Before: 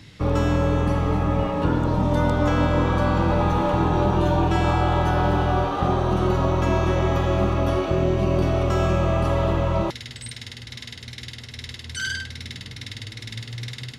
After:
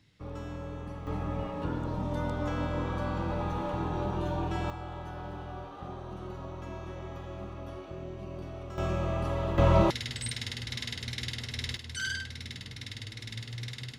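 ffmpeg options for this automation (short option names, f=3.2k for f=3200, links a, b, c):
-af "asetnsamples=n=441:p=0,asendcmd='1.07 volume volume -12dB;4.7 volume volume -20dB;8.78 volume volume -10dB;9.58 volume volume 0.5dB;11.77 volume volume -6dB',volume=-19dB"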